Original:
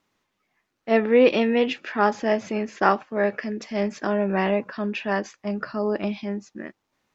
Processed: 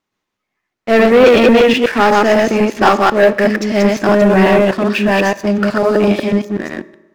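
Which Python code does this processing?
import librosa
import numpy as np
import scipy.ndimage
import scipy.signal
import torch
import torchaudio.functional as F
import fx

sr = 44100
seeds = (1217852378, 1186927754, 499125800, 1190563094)

y = fx.reverse_delay(x, sr, ms=124, wet_db=-1.0)
y = fx.leveller(y, sr, passes=3)
y = fx.rev_fdn(y, sr, rt60_s=1.1, lf_ratio=0.85, hf_ratio=0.65, size_ms=16.0, drr_db=15.0)
y = F.gain(torch.from_numpy(y), 1.0).numpy()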